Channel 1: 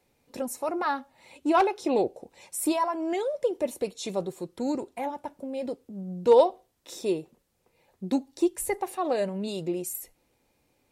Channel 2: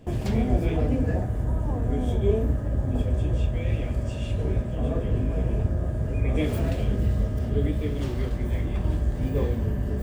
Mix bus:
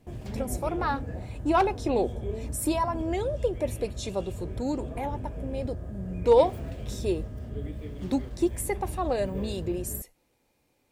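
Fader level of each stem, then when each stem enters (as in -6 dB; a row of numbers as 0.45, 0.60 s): -1.0, -11.0 dB; 0.00, 0.00 s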